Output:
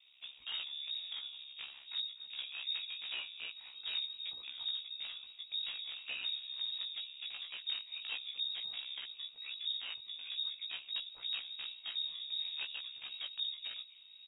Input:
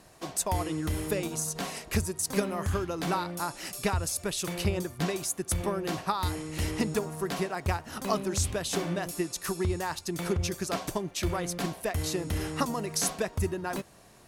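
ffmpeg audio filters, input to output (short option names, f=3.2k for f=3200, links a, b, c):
-filter_complex "[0:a]highshelf=f=1.6k:t=q:w=3:g=-8.5,asplit=2[a][b];[b]acompressor=threshold=-38dB:ratio=10,volume=1dB[c];[a][c]amix=inputs=2:normalize=0,asplit=2[d][e];[e]adelay=244.9,volume=-20dB,highshelf=f=4k:g=-5.51[f];[d][f]amix=inputs=2:normalize=0,acrossover=split=490|1100[g][h][i];[h]acrusher=bits=4:mix=0:aa=0.000001[j];[g][j][i]amix=inputs=3:normalize=0,asubboost=boost=10.5:cutoff=58,aeval=exprs='val(0)*sin(2*PI*34*n/s)':c=same,acrusher=bits=8:mode=log:mix=0:aa=0.000001,asoftclip=type=tanh:threshold=-26dB,flanger=delay=16:depth=2.8:speed=0.45,lowpass=f=3.2k:t=q:w=0.5098,lowpass=f=3.2k:t=q:w=0.6013,lowpass=f=3.2k:t=q:w=0.9,lowpass=f=3.2k:t=q:w=2.563,afreqshift=-3800,volume=-6dB"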